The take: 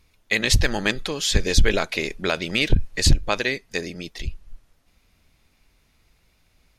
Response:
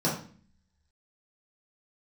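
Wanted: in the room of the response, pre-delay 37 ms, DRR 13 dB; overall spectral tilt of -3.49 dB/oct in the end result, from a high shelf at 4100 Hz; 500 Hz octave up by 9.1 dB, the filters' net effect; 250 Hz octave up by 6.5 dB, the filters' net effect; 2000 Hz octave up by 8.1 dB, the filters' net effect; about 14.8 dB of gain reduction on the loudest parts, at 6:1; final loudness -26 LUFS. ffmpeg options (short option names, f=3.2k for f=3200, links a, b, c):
-filter_complex "[0:a]equalizer=f=250:t=o:g=5.5,equalizer=f=500:t=o:g=9,equalizer=f=2k:t=o:g=8.5,highshelf=f=4.1k:g=3,acompressor=threshold=-25dB:ratio=6,asplit=2[a][b];[1:a]atrim=start_sample=2205,adelay=37[c];[b][c]afir=irnorm=-1:irlink=0,volume=-24dB[d];[a][d]amix=inputs=2:normalize=0,volume=2.5dB"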